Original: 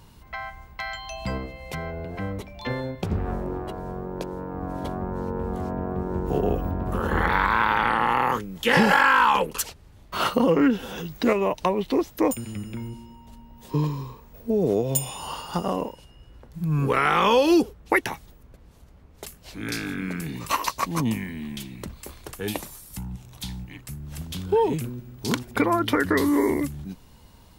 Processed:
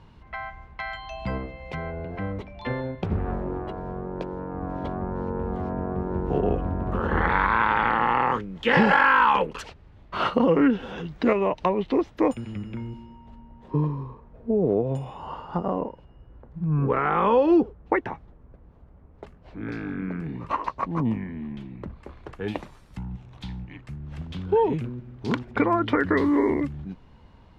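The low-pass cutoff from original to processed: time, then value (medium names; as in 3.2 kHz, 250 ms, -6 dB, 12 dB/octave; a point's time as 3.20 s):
12.98 s 2.8 kHz
13.82 s 1.3 kHz
21.75 s 1.3 kHz
22.61 s 2.4 kHz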